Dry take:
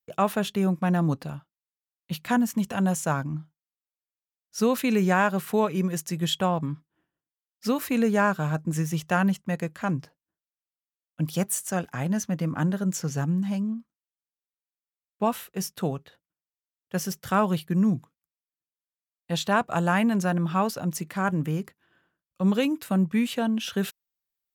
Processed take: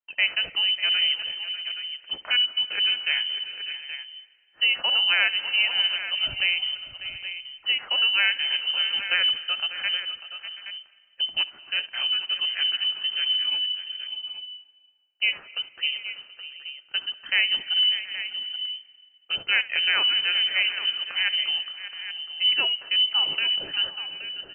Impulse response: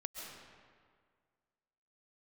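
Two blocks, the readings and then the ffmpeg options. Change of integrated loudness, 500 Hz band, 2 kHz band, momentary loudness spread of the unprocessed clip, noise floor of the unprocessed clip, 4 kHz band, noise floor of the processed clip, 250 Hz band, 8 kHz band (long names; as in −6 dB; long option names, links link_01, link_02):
+3.0 dB, −18.5 dB, +8.5 dB, 10 LU, below −85 dBFS, +20.0 dB, −59 dBFS, below −30 dB, below −40 dB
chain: -filter_complex "[0:a]lowpass=frequency=2700:width_type=q:width=0.5098,lowpass=frequency=2700:width_type=q:width=0.6013,lowpass=frequency=2700:width_type=q:width=0.9,lowpass=frequency=2700:width_type=q:width=2.563,afreqshift=-3200,aecho=1:1:595|727|823:0.211|0.112|0.266,asplit=2[link_01][link_02];[1:a]atrim=start_sample=2205,adelay=70[link_03];[link_02][link_03]afir=irnorm=-1:irlink=0,volume=-15dB[link_04];[link_01][link_04]amix=inputs=2:normalize=0"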